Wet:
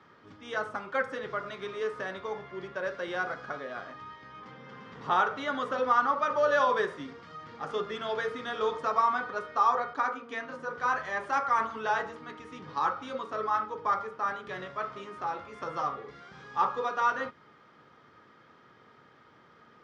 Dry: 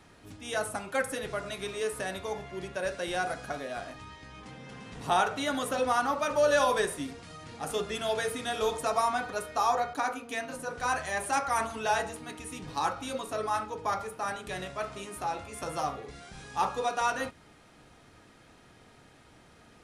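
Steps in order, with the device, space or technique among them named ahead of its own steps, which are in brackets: kitchen radio (cabinet simulation 170–4300 Hz, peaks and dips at 190 Hz -3 dB, 290 Hz -6 dB, 700 Hz -8 dB, 1.2 kHz +6 dB, 2.6 kHz -9 dB, 4 kHz -8 dB); trim +1 dB

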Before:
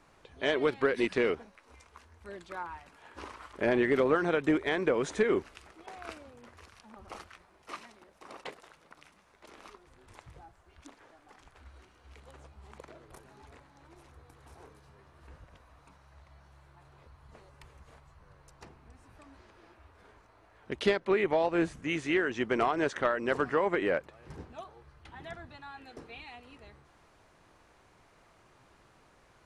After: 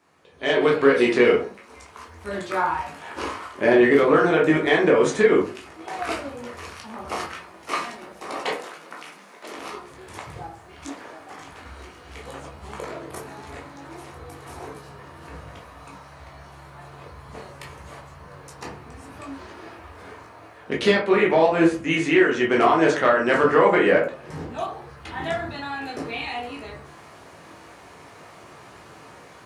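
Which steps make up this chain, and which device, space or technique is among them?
treble shelf 7.8 kHz +4 dB; 8.47–9.54 s: high-pass 190 Hz 24 dB/octave; far laptop microphone (reverberation RT60 0.35 s, pre-delay 13 ms, DRR -2.5 dB; high-pass 120 Hz 12 dB/octave; level rider gain up to 16 dB); trim -3.5 dB

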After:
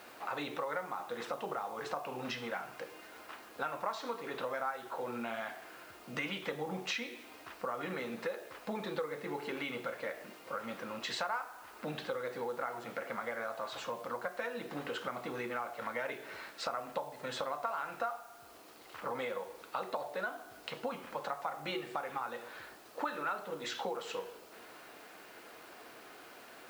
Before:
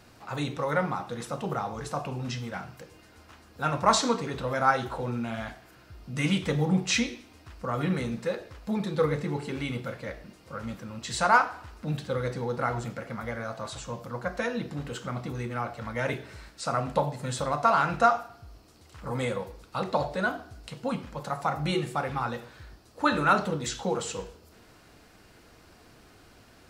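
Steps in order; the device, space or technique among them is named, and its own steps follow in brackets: baby monitor (band-pass 420–3300 Hz; compression 6:1, threshold -41 dBFS, peak gain reduction 23.5 dB; white noise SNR 22 dB); trim +5.5 dB

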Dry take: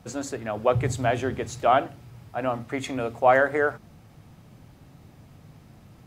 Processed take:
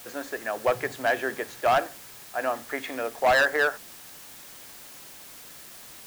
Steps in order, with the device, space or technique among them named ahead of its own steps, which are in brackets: drive-through speaker (band-pass 390–3500 Hz; peaking EQ 1.7 kHz +11 dB 0.22 oct; hard clipper -16 dBFS, distortion -11 dB; white noise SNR 17 dB)

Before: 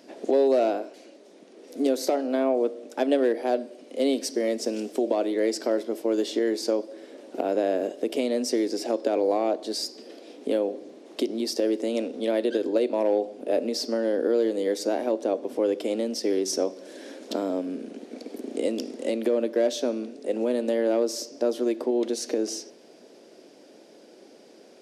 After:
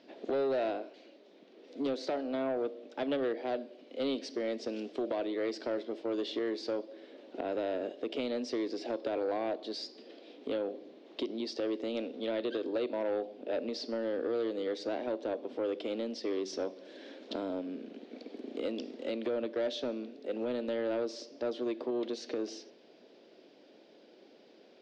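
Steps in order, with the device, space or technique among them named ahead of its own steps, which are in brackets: overdriven synthesiser ladder filter (saturation -17.5 dBFS, distortion -16 dB; four-pole ladder low-pass 4.6 kHz, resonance 35%)

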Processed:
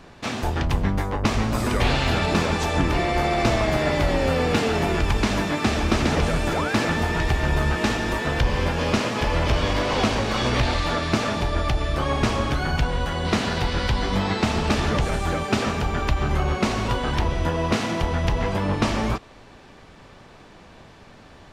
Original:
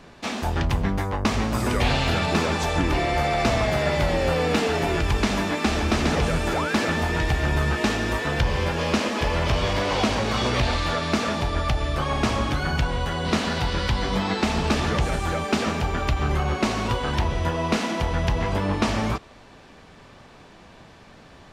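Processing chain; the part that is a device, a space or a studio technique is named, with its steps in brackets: octave pedal (harmony voices -12 st -6 dB)

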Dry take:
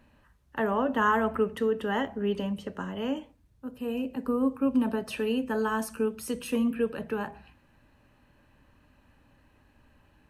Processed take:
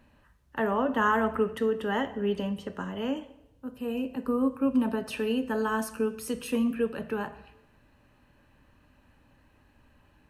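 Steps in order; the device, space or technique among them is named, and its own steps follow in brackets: filtered reverb send (on a send: high-pass 370 Hz + low-pass 8.8 kHz + reverberation RT60 1.0 s, pre-delay 11 ms, DRR 12.5 dB)

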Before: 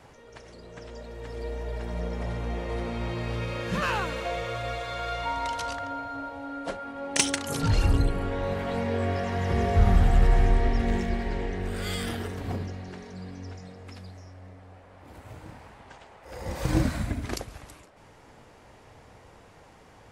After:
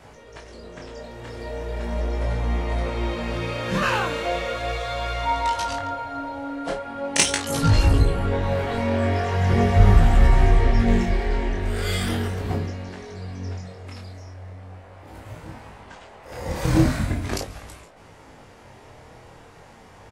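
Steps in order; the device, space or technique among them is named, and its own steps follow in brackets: double-tracked vocal (doubling 31 ms -8.5 dB; chorus 0.39 Hz, delay 18 ms, depth 6.9 ms); trim +8 dB

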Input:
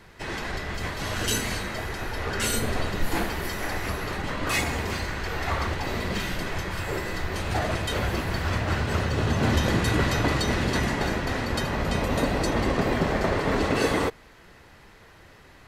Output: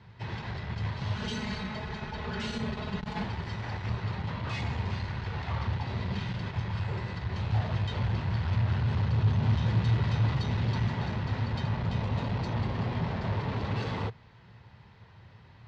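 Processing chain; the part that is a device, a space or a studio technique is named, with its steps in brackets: guitar amplifier (valve stage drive 26 dB, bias 0.4; tone controls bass +14 dB, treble +12 dB; cabinet simulation 96–3900 Hz, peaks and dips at 110 Hz +9 dB, 300 Hz -8 dB, 920 Hz +8 dB); 1.16–3.24 s: comb 4.7 ms, depth 81%; trim -8.5 dB

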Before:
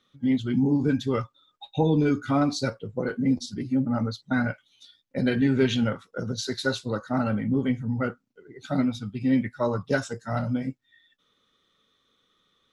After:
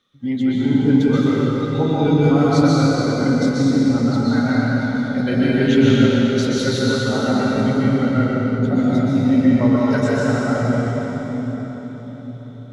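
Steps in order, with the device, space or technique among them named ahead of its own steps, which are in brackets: cathedral (reverberation RT60 4.8 s, pre-delay 117 ms, DRR -7.5 dB); 8.58–9.77 s: tilt shelf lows +3 dB

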